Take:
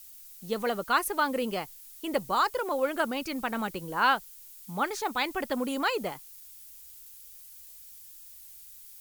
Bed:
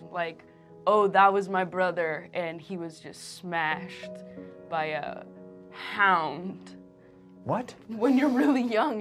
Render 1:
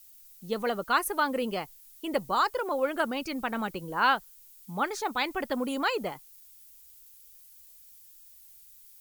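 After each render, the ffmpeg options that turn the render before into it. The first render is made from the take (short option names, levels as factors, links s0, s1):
-af "afftdn=nr=6:nf=-49"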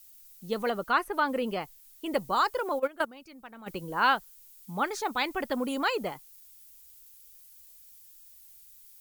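-filter_complex "[0:a]asettb=1/sr,asplit=3[s0][s1][s2];[s0]atrim=end=0.704[s3];[s1]atrim=start=0.7:end=2.06,asetpts=PTS-STARTPTS,afade=t=in:d=0.004:c=qsin,afade=t=out:st=1.356:d=0.004:c=qsin,acrossover=split=3600[s4][s5];[s5]acompressor=threshold=0.00355:ratio=4:attack=1:release=60[s6];[s4][s6]amix=inputs=2:normalize=0[s7];[s2]atrim=start=2.056[s8];[s3][s7]acrossfade=d=0.004:c1=hsin:c2=qsin[s9];[s9][s8]acrossfade=d=0.004:c1=qsin:c2=hsin,asplit=3[s10][s11][s12];[s10]afade=t=out:st=2.78:d=0.02[s13];[s11]agate=range=0.158:threshold=0.0447:ratio=16:release=100:detection=peak,afade=t=in:st=2.78:d=0.02,afade=t=out:st=3.66:d=0.02[s14];[s12]afade=t=in:st=3.66:d=0.02[s15];[s13][s14][s15]amix=inputs=3:normalize=0"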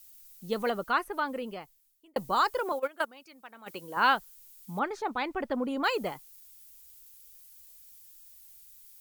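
-filter_complex "[0:a]asettb=1/sr,asplit=3[s0][s1][s2];[s0]atrim=end=2.724[s3];[s1]atrim=start=2.72:end=3.97,asetpts=PTS-STARTPTS,afade=t=in:d=0.004:c=qsin,afade=t=out:st=1.246:d=0.004:c=qsin,highpass=f=520:p=1[s4];[s2]atrim=start=3.966[s5];[s3][s4]acrossfade=d=0.004:c1=hsin:c2=qsin[s6];[s6][s5]acrossfade=d=0.004:c1=qsin:c2=hsin,asettb=1/sr,asplit=3[s7][s8][s9];[s7]atrim=end=4.794[s10];[s8]atrim=start=4.79:end=5.84,asetpts=PTS-STARTPTS,afade=t=in:d=0.004:c=qsin,afade=t=out:st=1.046:d=0.004:c=qsin,lowpass=f=1500:p=1[s11];[s9]atrim=start=5.836[s12];[s10][s11]acrossfade=d=0.004:c1=hsin:c2=qsin[s13];[s13][s12]acrossfade=d=0.004:c1=qsin:c2=hsin,asplit=2[s14][s15];[s14]atrim=end=2.16,asetpts=PTS-STARTPTS,afade=t=out:st=0.66:d=1.5[s16];[s15]atrim=start=2.16,asetpts=PTS-STARTPTS,afade=t=in:d=0.004:c=hsin[s17];[s16][s17]concat=n=2:v=0:a=1"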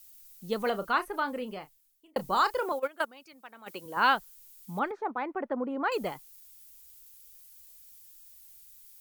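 -filter_complex "[0:a]asettb=1/sr,asplit=3[s0][s1][s2];[s0]atrim=end=0.614[s3];[s1]atrim=start=0.61:end=2.66,asetpts=PTS-STARTPTS,afade=t=in:d=0.004:c=qsin,afade=t=out:st=2.046:d=0.004:c=qsin,asplit=2[s4][s5];[s5]adelay=32,volume=0.251[s6];[s4][s6]amix=inputs=2:normalize=0,atrim=end_sample=90405[s7];[s2]atrim=start=2.656[s8];[s3][s7]acrossfade=d=0.004:c1=hsin:c2=qsin[s9];[s9][s8]acrossfade=d=0.004:c1=qsin:c2=hsin,asettb=1/sr,asplit=3[s10][s11][s12];[s10]atrim=end=3.334[s13];[s11]atrim=start=3.33:end=3.86,asetpts=PTS-STARTPTS,afade=t=in:d=0.004:c=qsin,afade=t=out:st=0.526:d=0.004:c=qsin,highpass=160[s14];[s12]atrim=start=3.856[s15];[s13][s14]acrossfade=d=0.004:c1=hsin:c2=qsin[s16];[s16][s15]acrossfade=d=0.004:c1=qsin:c2=hsin,asettb=1/sr,asplit=3[s17][s18][s19];[s17]atrim=end=4.914[s20];[s18]atrim=start=4.91:end=5.92,asetpts=PTS-STARTPTS,afade=t=in:d=0.004:c=qsin,afade=t=out:st=1.006:d=0.004:c=qsin,acrossover=split=190 2000:gain=0.0794 1 0.0794[s21][s22][s23];[s21][s22][s23]amix=inputs=3:normalize=0[s24];[s19]atrim=start=5.916[s25];[s20][s24]acrossfade=d=0.004:c1=hsin:c2=qsin[s26];[s26][s25]acrossfade=d=0.004:c1=qsin:c2=hsin"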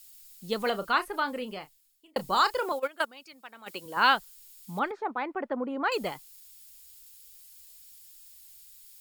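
-af "equalizer=f=4700:w=0.5:g=6.5,bandreject=f=6000:w=12"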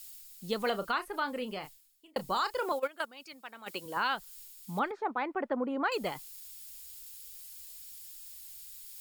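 -af "areverse,acompressor=mode=upward:threshold=0.00891:ratio=2.5,areverse,alimiter=limit=0.0944:level=0:latency=1:release=321"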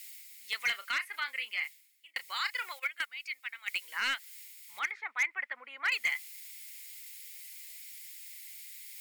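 -af "highpass=f=2100:t=q:w=8.1,asoftclip=type=hard:threshold=0.0668"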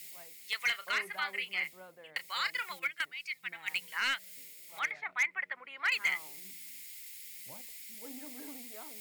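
-filter_complex "[1:a]volume=0.0473[s0];[0:a][s0]amix=inputs=2:normalize=0"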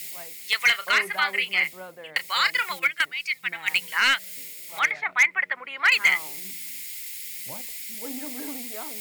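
-af "volume=3.76"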